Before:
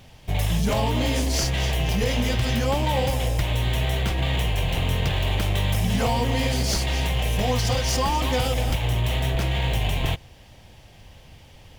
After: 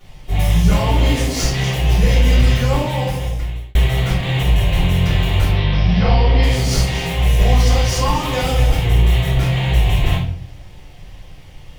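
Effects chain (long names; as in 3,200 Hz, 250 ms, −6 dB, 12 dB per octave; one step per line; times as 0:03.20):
0:05.45–0:06.43: Butterworth low-pass 5,400 Hz 72 dB per octave
rectangular room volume 78 cubic metres, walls mixed, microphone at 3.3 metres
0:02.69–0:03.75: fade out
level −8 dB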